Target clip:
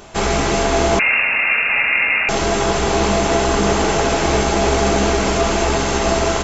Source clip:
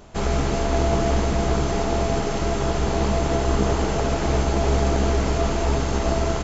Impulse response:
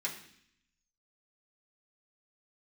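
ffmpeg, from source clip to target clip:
-filter_complex "[0:a]acontrast=87,lowshelf=f=320:g=-7,asplit=2[s0][s1];[1:a]atrim=start_sample=2205[s2];[s1][s2]afir=irnorm=-1:irlink=0,volume=0.355[s3];[s0][s3]amix=inputs=2:normalize=0,asettb=1/sr,asplit=3[s4][s5][s6];[s4]atrim=end=0.994[s7];[s5]atrim=start=0.99:end=2.29,asetpts=PTS-STARTPTS,afade=t=in:d=0.004:c=qsin,afade=t=out:st=1.296:d=0.004:c=qsin,lowpass=f=2400:t=q:w=0.5098,lowpass=f=2400:t=q:w=0.6013,lowpass=f=2400:t=q:w=0.9,lowpass=f=2400:t=q:w=2.563,afreqshift=-2800[s8];[s6]atrim=start=2.286[s9];[s7][s8]acrossfade=d=0.004:c1=hsin:c2=qsin[s10];[s10][s9]acrossfade=d=0.004:c1=qsin:c2=hsin,volume=1.26"

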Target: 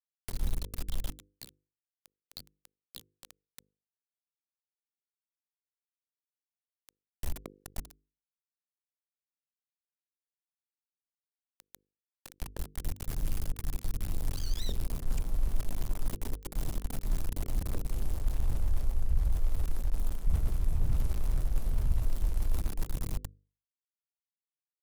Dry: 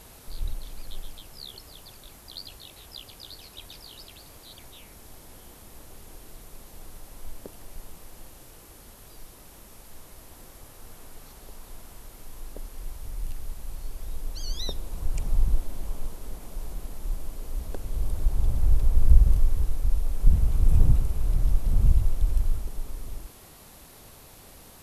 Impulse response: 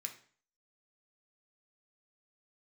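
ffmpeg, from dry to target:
-filter_complex "[0:a]aeval=exprs='val(0)*gte(abs(val(0)),0.0282)':c=same,areverse,acompressor=threshold=0.0398:ratio=4,areverse,bandreject=f=50:t=h:w=6,bandreject=f=100:t=h:w=6,bandreject=f=150:t=h:w=6,bandreject=f=200:t=h:w=6,bandreject=f=250:t=h:w=6,bandreject=f=300:t=h:w=6,bandreject=f=350:t=h:w=6,bandreject=f=400:t=h:w=6,bandreject=f=450:t=h:w=6,bandreject=f=500:t=h:w=6,acrossover=split=350[s0][s1];[s1]acompressor=threshold=0.00398:ratio=3[s2];[s0][s2]amix=inputs=2:normalize=0,volume=1.58"

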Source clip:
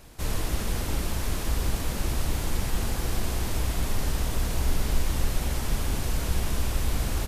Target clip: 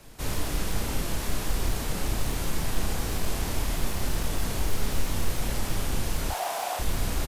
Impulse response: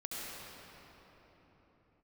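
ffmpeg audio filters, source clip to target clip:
-filter_complex "[0:a]aeval=exprs='0.119*(abs(mod(val(0)/0.119+3,4)-2)-1)':c=same,asettb=1/sr,asplit=3[s0][s1][s2];[s0]atrim=end=6.304[s3];[s1]atrim=start=6.3:end=6.79,asetpts=PTS-STARTPTS,afade=t=in:d=0.004:c=qsin,afade=t=out:st=0.486:d=0.004:c=qsin,highpass=f=750:t=q:w=7[s4];[s2]atrim=start=6.786[s5];[s3][s4]acrossfade=d=0.004:c1=hsin:c2=qsin[s6];[s6][s5]acrossfade=d=0.004:c1=qsin:c2=hsin,afreqshift=-18,asplit=2[s7][s8];[s8]adelay=31,volume=0.447[s9];[s7][s9]amix=inputs=2:normalize=0"

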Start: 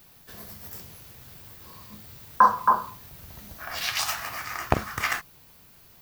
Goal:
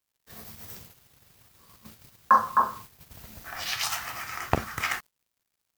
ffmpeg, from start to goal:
-af "acrusher=bits=6:mix=0:aa=0.5,agate=range=0.398:threshold=0.00631:ratio=16:detection=peak,asetrate=45938,aresample=44100,volume=0.794"

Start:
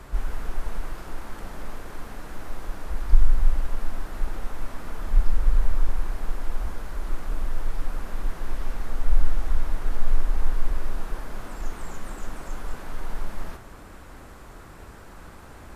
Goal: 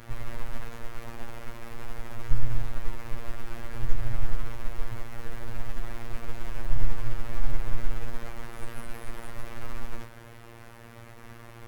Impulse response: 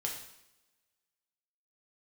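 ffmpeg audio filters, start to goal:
-filter_complex "[0:a]aeval=exprs='if(lt(val(0),0),0.708*val(0),val(0))':c=same,asplit=2[s0][s1];[1:a]atrim=start_sample=2205,afade=t=out:st=0.38:d=0.01,atrim=end_sample=17199,lowpass=f=1500:w=0.5412,lowpass=f=1500:w=1.3066[s2];[s1][s2]afir=irnorm=-1:irlink=0,volume=0.15[s3];[s0][s3]amix=inputs=2:normalize=0,afftfilt=real='hypot(re,im)*cos(PI*b)':imag='0':win_size=2048:overlap=0.75,asetrate=59535,aresample=44100,volume=1.19"

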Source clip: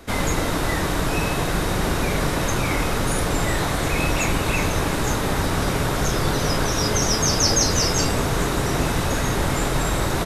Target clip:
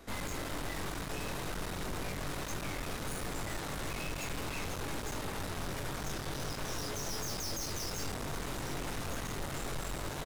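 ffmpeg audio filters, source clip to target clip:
-filter_complex "[0:a]asplit=2[s0][s1];[s1]adelay=21,volume=0.501[s2];[s0][s2]amix=inputs=2:normalize=0,aeval=exprs='(tanh(31.6*val(0)+0.7)-tanh(0.7))/31.6':c=same,volume=0.447"

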